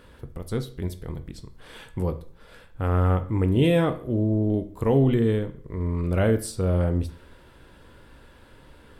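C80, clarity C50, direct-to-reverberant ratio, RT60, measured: 18.5 dB, 15.0 dB, 9.0 dB, 0.50 s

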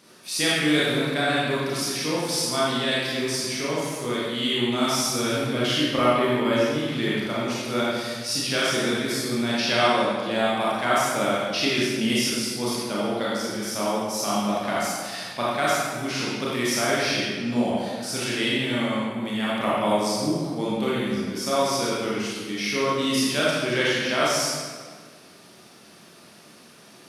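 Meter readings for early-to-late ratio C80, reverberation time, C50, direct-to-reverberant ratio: -1.0 dB, 1.7 s, -4.0 dB, -7.5 dB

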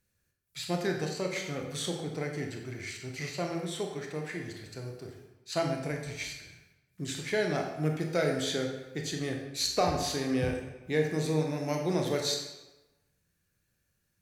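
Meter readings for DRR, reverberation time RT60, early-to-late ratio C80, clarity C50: 1.5 dB, 1.1 s, 6.5 dB, 4.5 dB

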